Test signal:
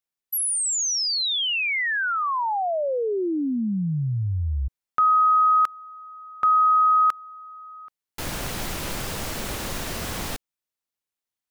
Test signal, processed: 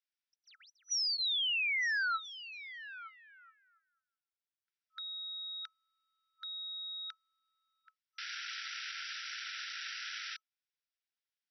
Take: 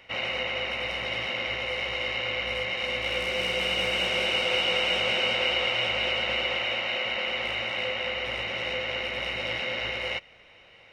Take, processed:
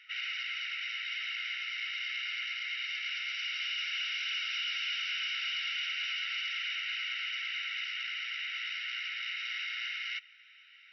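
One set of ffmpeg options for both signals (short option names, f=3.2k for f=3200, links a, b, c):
-af "asoftclip=type=tanh:threshold=-28dB,afftfilt=real='re*between(b*sr/4096,1300,5900)':imag='im*between(b*sr/4096,1300,5900)':win_size=4096:overlap=0.75,bandreject=f=4.3k:w=21,volume=-2.5dB"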